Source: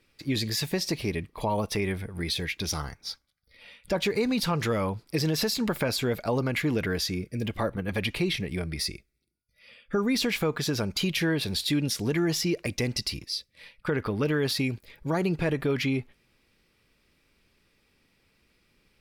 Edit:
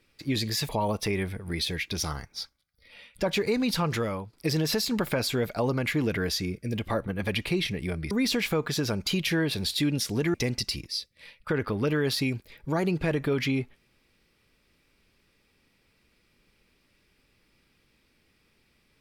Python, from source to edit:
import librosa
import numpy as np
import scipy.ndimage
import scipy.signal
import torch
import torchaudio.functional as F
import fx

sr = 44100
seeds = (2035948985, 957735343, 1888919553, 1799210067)

y = fx.edit(x, sr, fx.cut(start_s=0.69, length_s=0.69),
    fx.fade_out_to(start_s=4.6, length_s=0.42, floor_db=-12.0),
    fx.cut(start_s=8.8, length_s=1.21),
    fx.cut(start_s=12.24, length_s=0.48), tone=tone)